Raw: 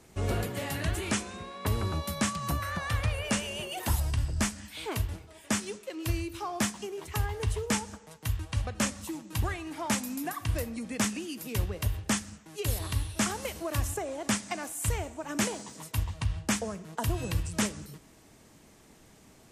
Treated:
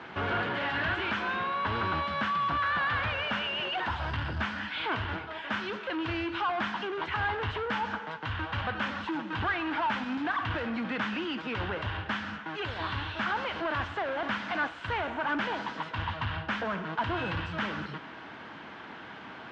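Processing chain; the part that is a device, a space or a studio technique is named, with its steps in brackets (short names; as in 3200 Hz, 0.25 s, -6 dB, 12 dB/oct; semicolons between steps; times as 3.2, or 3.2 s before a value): overdrive pedal into a guitar cabinet (overdrive pedal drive 32 dB, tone 1500 Hz, clips at -16 dBFS; speaker cabinet 77–3900 Hz, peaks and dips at 79 Hz +4 dB, 420 Hz -5 dB, 590 Hz -4 dB, 960 Hz +4 dB, 1500 Hz +10 dB, 3100 Hz +5 dB); gain -6.5 dB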